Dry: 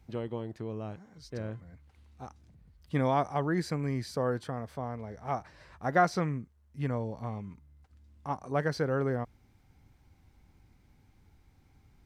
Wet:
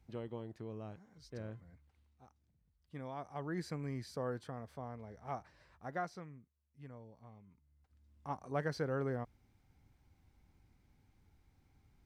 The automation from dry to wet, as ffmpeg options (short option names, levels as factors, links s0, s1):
-af "volume=5.01,afade=t=out:st=1.67:d=0.55:silence=0.316228,afade=t=in:st=3.16:d=0.47:silence=0.354813,afade=t=out:st=5.4:d=0.85:silence=0.281838,afade=t=in:st=7.46:d=0.84:silence=0.223872"